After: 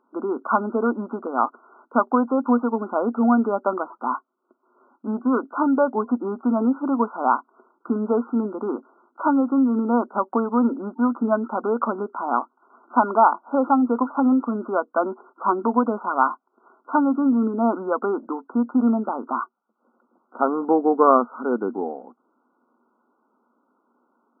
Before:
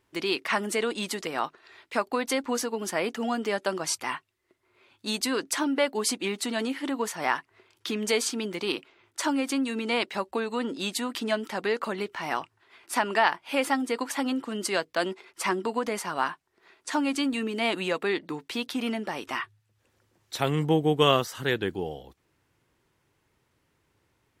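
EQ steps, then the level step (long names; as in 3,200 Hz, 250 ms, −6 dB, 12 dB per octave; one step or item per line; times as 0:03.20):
linear-phase brick-wall band-pass 190–1,500 Hz
parametric band 240 Hz +13 dB 0.37 octaves
parametric band 1,100 Hz +9.5 dB 2.2 octaves
0.0 dB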